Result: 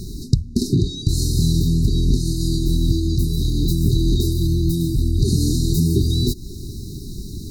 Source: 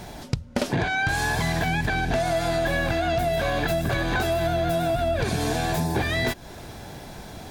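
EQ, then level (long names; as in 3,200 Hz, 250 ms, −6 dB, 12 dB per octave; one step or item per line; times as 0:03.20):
linear-phase brick-wall band-stop 420–3,700 Hz
low-shelf EQ 91 Hz +9 dB
+6.5 dB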